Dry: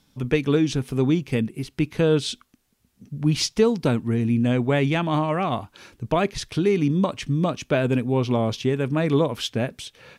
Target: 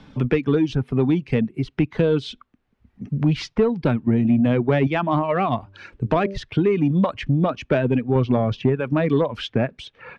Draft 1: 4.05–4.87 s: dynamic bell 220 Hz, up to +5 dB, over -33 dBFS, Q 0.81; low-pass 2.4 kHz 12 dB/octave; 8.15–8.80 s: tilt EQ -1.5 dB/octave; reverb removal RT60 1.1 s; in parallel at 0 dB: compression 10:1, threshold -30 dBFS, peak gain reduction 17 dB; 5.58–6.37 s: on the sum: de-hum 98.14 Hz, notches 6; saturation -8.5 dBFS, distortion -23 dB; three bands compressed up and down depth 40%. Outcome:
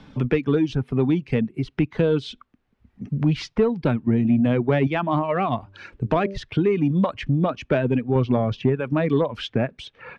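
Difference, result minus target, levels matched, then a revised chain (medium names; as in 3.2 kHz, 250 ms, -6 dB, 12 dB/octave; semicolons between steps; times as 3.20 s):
compression: peak gain reduction +6 dB
4.05–4.87 s: dynamic bell 220 Hz, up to +5 dB, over -33 dBFS, Q 0.81; low-pass 2.4 kHz 12 dB/octave; 8.15–8.80 s: tilt EQ -1.5 dB/octave; reverb removal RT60 1.1 s; in parallel at 0 dB: compression 10:1, threshold -23.5 dBFS, peak gain reduction 11.5 dB; 5.58–6.37 s: on the sum: de-hum 98.14 Hz, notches 6; saturation -8.5 dBFS, distortion -21 dB; three bands compressed up and down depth 40%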